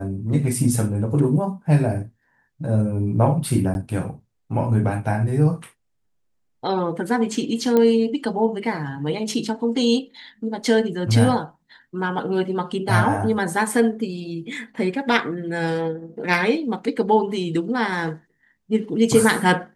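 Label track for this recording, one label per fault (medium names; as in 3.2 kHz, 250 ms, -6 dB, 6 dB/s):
3.740000	3.750000	dropout 11 ms
7.770000	7.770000	pop -8 dBFS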